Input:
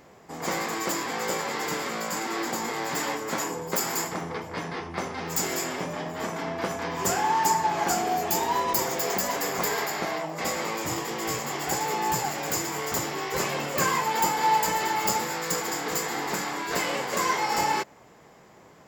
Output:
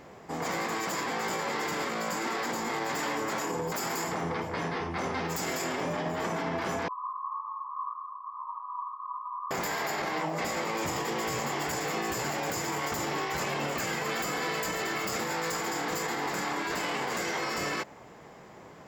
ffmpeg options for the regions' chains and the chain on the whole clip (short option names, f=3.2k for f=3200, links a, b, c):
-filter_complex "[0:a]asettb=1/sr,asplit=3[a][b][c];[a]atrim=end=6.884[d];[b]atrim=start=6.88:end=9.51,asetpts=PTS-STARTPTS,afade=t=in:d=0.004:c=qsin,afade=t=out:st=2.626:d=0.004:c=qsin,asuperpass=centerf=1100:order=12:qfactor=4.3,aemphasis=mode=reproduction:type=50kf[e];[c]atrim=start=9.506[f];[d][e]acrossfade=d=0.004:c1=hsin:c2=qsin[g];[g][f]acrossfade=d=0.004:c1=qsin:c2=hsin,afftfilt=real='re*lt(hypot(re,im),0.2)':imag='im*lt(hypot(re,im),0.2)':win_size=1024:overlap=0.75,highshelf=f=5.8k:g=-7.5,alimiter=level_in=2.5dB:limit=-24dB:level=0:latency=1:release=29,volume=-2.5dB,volume=3.5dB"